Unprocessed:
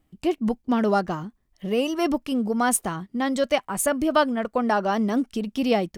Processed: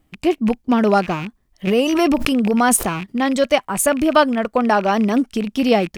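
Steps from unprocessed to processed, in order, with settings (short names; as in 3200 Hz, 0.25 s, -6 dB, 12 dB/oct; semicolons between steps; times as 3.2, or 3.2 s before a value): rattling part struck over -40 dBFS, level -27 dBFS; 1.67–3.14 backwards sustainer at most 28 dB/s; gain +6 dB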